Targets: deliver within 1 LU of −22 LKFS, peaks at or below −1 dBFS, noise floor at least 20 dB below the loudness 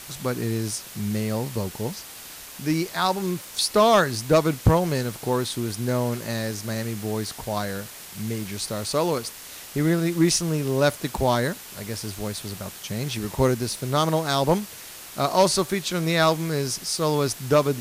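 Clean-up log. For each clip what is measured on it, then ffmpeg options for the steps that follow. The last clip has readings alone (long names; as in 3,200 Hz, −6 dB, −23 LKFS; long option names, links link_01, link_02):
background noise floor −41 dBFS; target noise floor −45 dBFS; integrated loudness −24.5 LKFS; sample peak −9.5 dBFS; target loudness −22.0 LKFS
→ -af "afftdn=noise_reduction=6:noise_floor=-41"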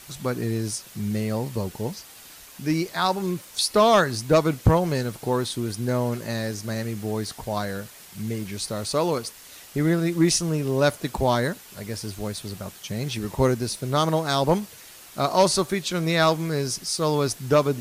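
background noise floor −46 dBFS; integrated loudness −24.5 LKFS; sample peak −9.5 dBFS; target loudness −22.0 LKFS
→ -af "volume=2.5dB"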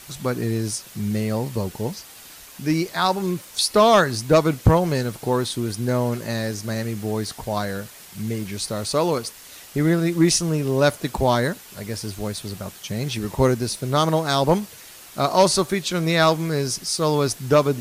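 integrated loudness −22.0 LKFS; sample peak −7.0 dBFS; background noise floor −44 dBFS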